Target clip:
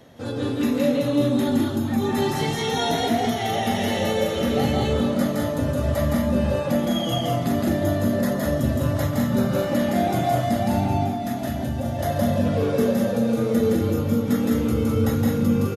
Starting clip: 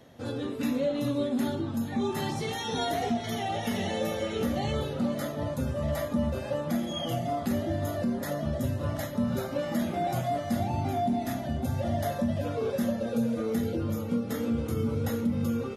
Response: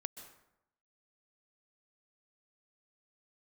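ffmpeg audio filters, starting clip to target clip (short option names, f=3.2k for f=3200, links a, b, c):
-filter_complex "[0:a]asettb=1/sr,asplit=3[a][b][c];[a]atrim=end=10.864[d];[b]atrim=start=10.86:end=11.99,asetpts=PTS-STARTPTS,afade=t=in:d=0.004:c=qsin,afade=t=out:st=1.126:d=0.004:c=qsin,acompressor=threshold=-30dB:ratio=6[e];[c]atrim=start=11.986[f];[d][e]acrossfade=d=0.004:c1=hsin:c2=qsin[g];[g][f]acrossfade=d=0.004:c1=qsin:c2=hsin,aecho=1:1:166.2|207:0.794|0.631,asplit=2[h][i];[1:a]atrim=start_sample=2205[j];[i][j]afir=irnorm=-1:irlink=0,volume=0dB[k];[h][k]amix=inputs=2:normalize=0"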